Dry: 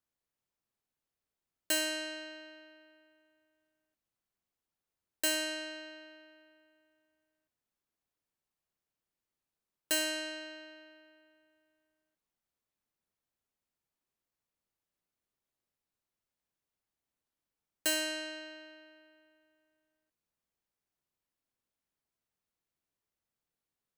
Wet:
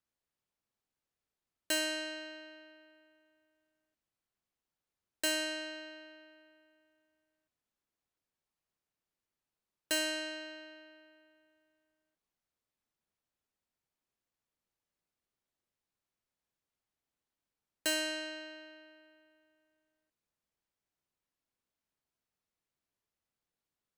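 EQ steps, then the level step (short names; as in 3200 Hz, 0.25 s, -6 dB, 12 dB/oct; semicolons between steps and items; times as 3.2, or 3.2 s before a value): high shelf 10000 Hz -8 dB; 0.0 dB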